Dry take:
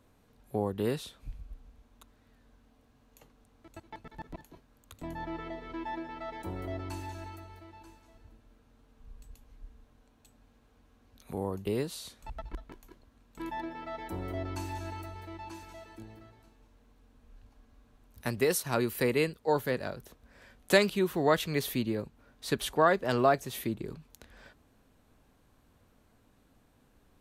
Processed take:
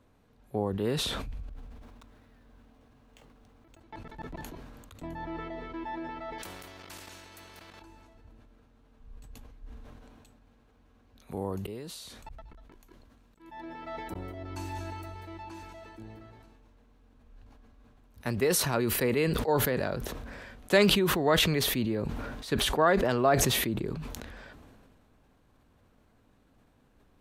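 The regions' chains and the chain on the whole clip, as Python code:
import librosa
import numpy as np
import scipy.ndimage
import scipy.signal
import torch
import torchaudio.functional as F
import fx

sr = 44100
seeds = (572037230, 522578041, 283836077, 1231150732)

y = fx.chain(x, sr, fx.over_compress(threshold_db=-58.0, ratio=-1.0),
    fx.resample_bad(factor=3, down='none', up='hold'), at=(1.49, 3.81))
y = fx.chain(y, sr, fx.level_steps(step_db=13),
    fx.spectral_comp(ratio=4.0), at=(6.38, 7.82))
y = fx.chain(y, sr, fx.high_shelf(hz=4200.0, db=5.5),
    fx.auto_swell(attack_ms=525.0), at=(11.31, 15.43))
y = fx.high_shelf(y, sr, hz=5600.0, db=-8.0)
y = fx.sustainer(y, sr, db_per_s=25.0)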